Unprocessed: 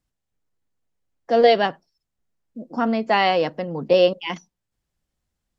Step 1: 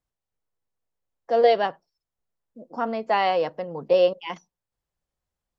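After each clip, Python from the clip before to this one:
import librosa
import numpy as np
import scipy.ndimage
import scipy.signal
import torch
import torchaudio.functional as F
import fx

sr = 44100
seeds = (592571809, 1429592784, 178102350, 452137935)

y = fx.graphic_eq(x, sr, hz=(250, 500, 1000), db=(-4, 5, 5))
y = y * 10.0 ** (-7.5 / 20.0)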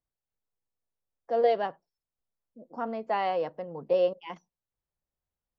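y = fx.high_shelf(x, sr, hz=2300.0, db=-8.5)
y = y * 10.0 ** (-5.5 / 20.0)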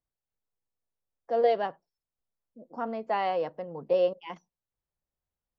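y = x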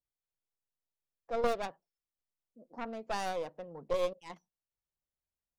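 y = fx.tracing_dist(x, sr, depth_ms=0.34)
y = y * 10.0 ** (-7.5 / 20.0)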